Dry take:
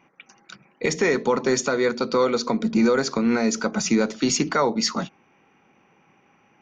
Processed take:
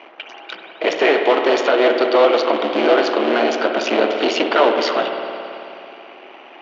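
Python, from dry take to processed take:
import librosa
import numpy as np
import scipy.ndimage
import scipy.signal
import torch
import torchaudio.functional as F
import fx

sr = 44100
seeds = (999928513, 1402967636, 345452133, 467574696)

y = fx.cycle_switch(x, sr, every=3, mode='muted')
y = fx.power_curve(y, sr, exponent=0.7)
y = fx.cabinet(y, sr, low_hz=330.0, low_slope=24, high_hz=4100.0, hz=(340.0, 660.0, 3000.0), db=(4, 9, 9))
y = fx.rev_spring(y, sr, rt60_s=2.9, pass_ms=(55,), chirp_ms=50, drr_db=4.5)
y = y * 10.0 ** (3.0 / 20.0)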